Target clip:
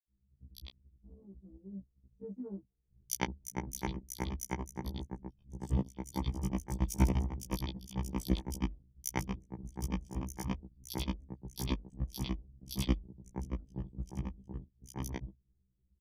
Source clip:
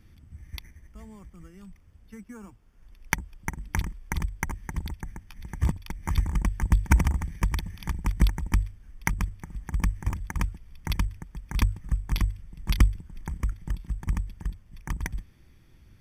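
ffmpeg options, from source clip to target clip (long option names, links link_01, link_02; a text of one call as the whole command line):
ffmpeg -i in.wav -filter_complex "[0:a]firequalizer=gain_entry='entry(470,0);entry(1500,-23);entry(3200,-5)':delay=0.05:min_phase=1,dynaudnorm=framelen=310:gausssize=7:maxgain=4.5dB,highshelf=frequency=9100:gain=-3.5,anlmdn=2.51,asplit=2[link_01][link_02];[link_02]acompressor=threshold=-30dB:ratio=6,volume=-2.5dB[link_03];[link_01][link_03]amix=inputs=2:normalize=0,highpass=frequency=370:poles=1,acrossover=split=4200[link_04][link_05];[link_04]adelay=100[link_06];[link_06][link_05]amix=inputs=2:normalize=0,afftfilt=real='re*1.73*eq(mod(b,3),0)':imag='im*1.73*eq(mod(b,3),0)':win_size=2048:overlap=0.75,volume=1dB" out.wav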